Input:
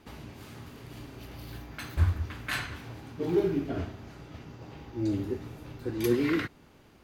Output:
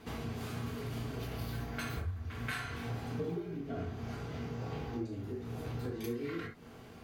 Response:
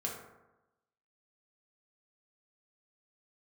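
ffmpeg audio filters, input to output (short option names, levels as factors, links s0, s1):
-filter_complex "[0:a]acompressor=threshold=0.01:ratio=20[s0];[1:a]atrim=start_sample=2205,atrim=end_sample=3528[s1];[s0][s1]afir=irnorm=-1:irlink=0,volume=1.58"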